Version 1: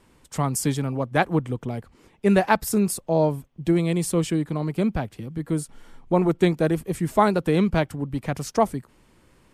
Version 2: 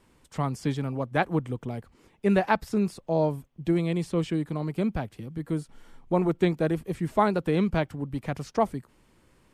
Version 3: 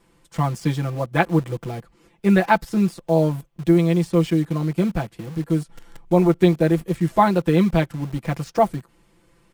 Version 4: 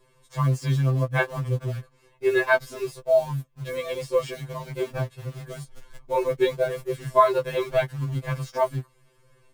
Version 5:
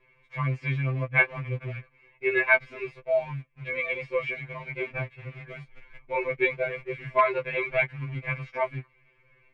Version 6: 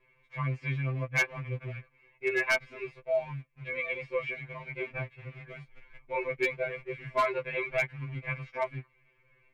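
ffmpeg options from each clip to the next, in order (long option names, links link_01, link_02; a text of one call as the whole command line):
ffmpeg -i in.wav -filter_complex "[0:a]acrossover=split=4800[link_01][link_02];[link_02]acompressor=threshold=-50dB:ratio=4:attack=1:release=60[link_03];[link_01][link_03]amix=inputs=2:normalize=0,volume=-4dB" out.wav
ffmpeg -i in.wav -filter_complex "[0:a]aecho=1:1:5.9:0.93,asplit=2[link_01][link_02];[link_02]acrusher=bits=5:mix=0:aa=0.000001,volume=-7.5dB[link_03];[link_01][link_03]amix=inputs=2:normalize=0" out.wav
ffmpeg -i in.wav -af "afftfilt=real='re*2.45*eq(mod(b,6),0)':imag='im*2.45*eq(mod(b,6),0)':win_size=2048:overlap=0.75" out.wav
ffmpeg -i in.wav -af "asoftclip=type=hard:threshold=-8dB,lowpass=frequency=2300:width_type=q:width=10,volume=-6dB" out.wav
ffmpeg -i in.wav -af "asoftclip=type=hard:threshold=-16.5dB,volume=-4dB" out.wav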